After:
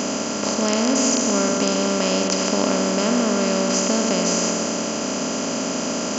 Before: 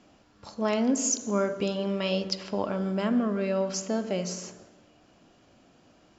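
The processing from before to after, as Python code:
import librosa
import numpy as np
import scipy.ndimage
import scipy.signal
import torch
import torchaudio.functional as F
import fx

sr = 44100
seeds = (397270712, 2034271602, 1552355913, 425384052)

y = fx.bin_compress(x, sr, power=0.2)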